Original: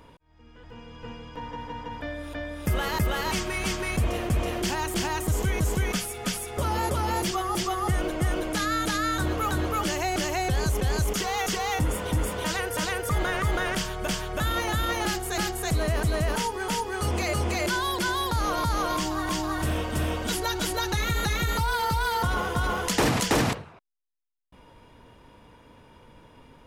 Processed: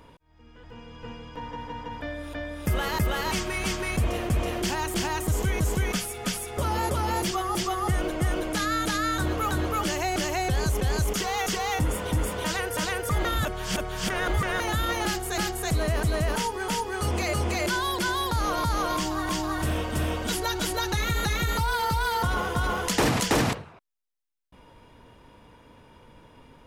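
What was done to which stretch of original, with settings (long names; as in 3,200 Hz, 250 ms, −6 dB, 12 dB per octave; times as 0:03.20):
0:13.25–0:14.60: reverse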